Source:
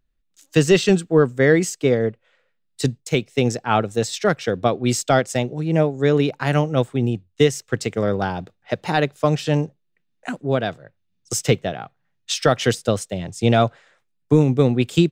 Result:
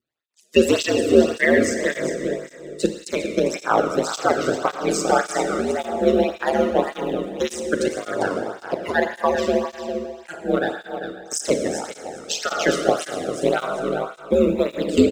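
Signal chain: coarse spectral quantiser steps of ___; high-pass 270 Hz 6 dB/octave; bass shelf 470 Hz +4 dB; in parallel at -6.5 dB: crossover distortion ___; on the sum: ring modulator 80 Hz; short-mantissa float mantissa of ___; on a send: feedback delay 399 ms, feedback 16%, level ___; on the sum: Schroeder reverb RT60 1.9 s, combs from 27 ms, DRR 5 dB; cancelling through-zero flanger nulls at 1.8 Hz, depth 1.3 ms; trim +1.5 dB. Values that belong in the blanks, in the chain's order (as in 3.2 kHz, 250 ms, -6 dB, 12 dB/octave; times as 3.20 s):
30 dB, -37.5 dBFS, 6-bit, -9 dB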